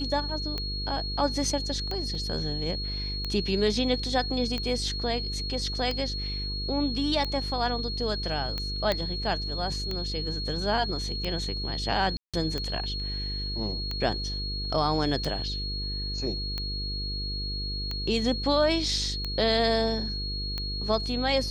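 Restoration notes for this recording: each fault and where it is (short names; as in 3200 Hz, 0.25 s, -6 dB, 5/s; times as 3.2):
buzz 50 Hz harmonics 10 -34 dBFS
tick 45 rpm -18 dBFS
tone 4300 Hz -33 dBFS
2.15 gap 2.2 ms
8.92 pop -13 dBFS
12.17–12.34 gap 0.166 s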